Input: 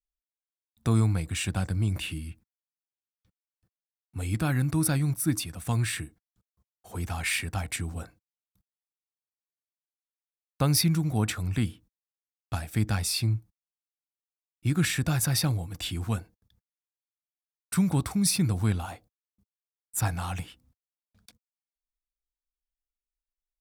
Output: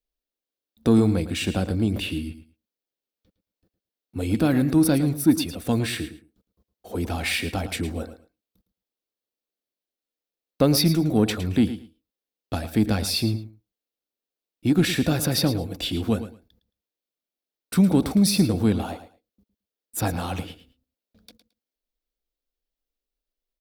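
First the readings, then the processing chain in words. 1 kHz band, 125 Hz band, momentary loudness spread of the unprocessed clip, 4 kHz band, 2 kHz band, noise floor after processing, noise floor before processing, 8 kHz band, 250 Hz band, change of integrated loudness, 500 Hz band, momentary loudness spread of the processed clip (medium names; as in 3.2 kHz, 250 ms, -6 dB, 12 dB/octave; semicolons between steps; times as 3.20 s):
+3.5 dB, +1.0 dB, 12 LU, +5.0 dB, +2.5 dB, under -85 dBFS, under -85 dBFS, -0.5 dB, +9.0 dB, +5.0 dB, +12.0 dB, 14 LU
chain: ten-band graphic EQ 125 Hz -8 dB, 250 Hz +8 dB, 500 Hz +9 dB, 1 kHz -5 dB, 2 kHz -3 dB, 4 kHz +4 dB, 8 kHz -8 dB; in parallel at -5 dB: saturation -19.5 dBFS, distortion -13 dB; on the sum: feedback delay 110 ms, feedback 18%, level -12.5 dB; trim +1 dB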